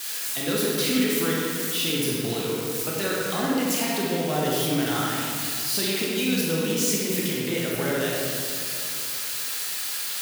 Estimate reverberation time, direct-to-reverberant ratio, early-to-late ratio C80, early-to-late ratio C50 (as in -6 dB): 2.6 s, -5.0 dB, -0.5 dB, -2.5 dB